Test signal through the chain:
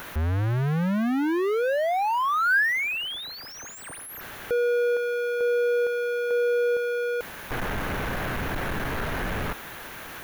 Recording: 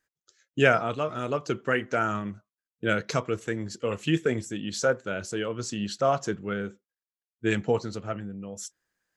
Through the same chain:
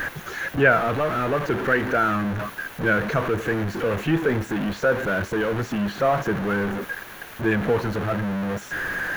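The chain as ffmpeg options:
ffmpeg -i in.wav -filter_complex "[0:a]aeval=exprs='val(0)+0.5*0.0841*sgn(val(0))':channel_layout=same,equalizer=frequency=1600:width_type=o:width=0.33:gain=6,equalizer=frequency=5000:width_type=o:width=0.33:gain=-6,equalizer=frequency=8000:width_type=o:width=0.33:gain=-11,acrossover=split=2500[link_01][link_02];[link_02]acompressor=threshold=-43dB:ratio=4:attack=1:release=60[link_03];[link_01][link_03]amix=inputs=2:normalize=0" out.wav

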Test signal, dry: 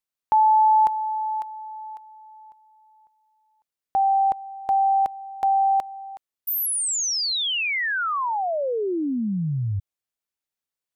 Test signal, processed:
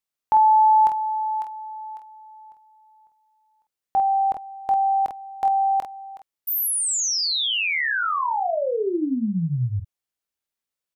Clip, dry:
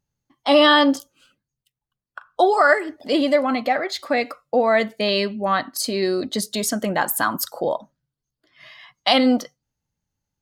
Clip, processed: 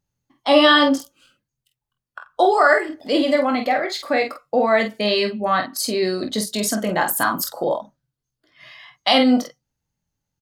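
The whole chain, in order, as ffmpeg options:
ffmpeg -i in.wav -af "aecho=1:1:23|48:0.355|0.447" out.wav

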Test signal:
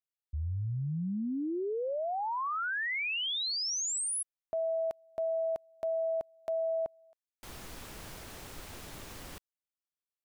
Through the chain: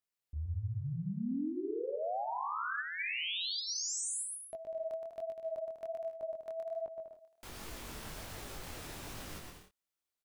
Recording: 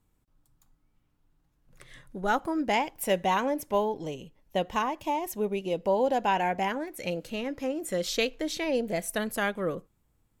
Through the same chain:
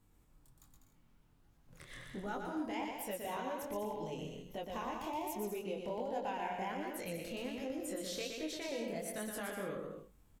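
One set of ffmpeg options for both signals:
ffmpeg -i in.wav -af "acompressor=threshold=-41dB:ratio=4:attack=0.14:release=205:knee=6:detection=rms,aecho=1:1:120|198|248.7|281.7|303.1:0.631|0.398|0.251|0.158|0.1,flanger=delay=19:depth=7.6:speed=1.3,volume=5dB" out.wav

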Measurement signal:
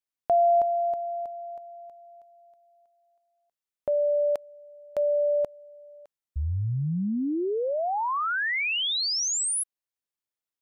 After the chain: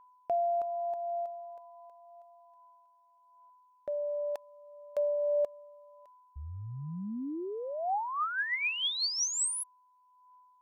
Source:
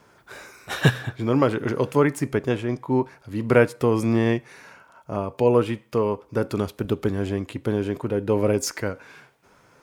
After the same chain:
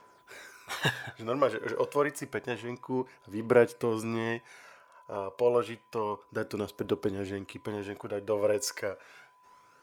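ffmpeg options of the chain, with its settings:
ffmpeg -i in.wav -af "bass=frequency=250:gain=-12,treble=frequency=4000:gain=1,aeval=exprs='val(0)+0.002*sin(2*PI*1000*n/s)':channel_layout=same,aphaser=in_gain=1:out_gain=1:delay=2.1:decay=0.43:speed=0.29:type=triangular,volume=-6.5dB" out.wav

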